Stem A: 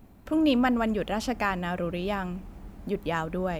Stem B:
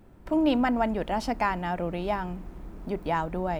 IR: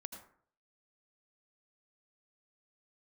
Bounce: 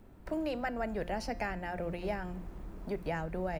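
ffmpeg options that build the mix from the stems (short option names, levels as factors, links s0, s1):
-filter_complex "[0:a]volume=0.237[s0];[1:a]acrossover=split=340|1400[s1][s2][s3];[s1]acompressor=threshold=0.0355:ratio=4[s4];[s2]acompressor=threshold=0.0126:ratio=4[s5];[s3]acompressor=threshold=0.00794:ratio=4[s6];[s4][s5][s6]amix=inputs=3:normalize=0,adelay=0.3,volume=0.708[s7];[s0][s7]amix=inputs=2:normalize=0,bandreject=f=175.6:t=h:w=4,bandreject=f=351.2:t=h:w=4,bandreject=f=526.8:t=h:w=4,bandreject=f=702.4:t=h:w=4,bandreject=f=878:t=h:w=4,bandreject=f=1053.6:t=h:w=4,bandreject=f=1229.2:t=h:w=4,bandreject=f=1404.8:t=h:w=4,bandreject=f=1580.4:t=h:w=4,bandreject=f=1756:t=h:w=4,bandreject=f=1931.6:t=h:w=4,bandreject=f=2107.2:t=h:w=4,bandreject=f=2282.8:t=h:w=4,bandreject=f=2458.4:t=h:w=4,bandreject=f=2634:t=h:w=4,bandreject=f=2809.6:t=h:w=4,bandreject=f=2985.2:t=h:w=4,bandreject=f=3160.8:t=h:w=4,bandreject=f=3336.4:t=h:w=4,bandreject=f=3512:t=h:w=4,bandreject=f=3687.6:t=h:w=4,bandreject=f=3863.2:t=h:w=4,bandreject=f=4038.8:t=h:w=4,bandreject=f=4214.4:t=h:w=4,bandreject=f=4390:t=h:w=4,bandreject=f=4565.6:t=h:w=4,bandreject=f=4741.2:t=h:w=4,bandreject=f=4916.8:t=h:w=4,bandreject=f=5092.4:t=h:w=4,bandreject=f=5268:t=h:w=4,bandreject=f=5443.6:t=h:w=4,bandreject=f=5619.2:t=h:w=4,bandreject=f=5794.8:t=h:w=4,bandreject=f=5970.4:t=h:w=4,bandreject=f=6146:t=h:w=4"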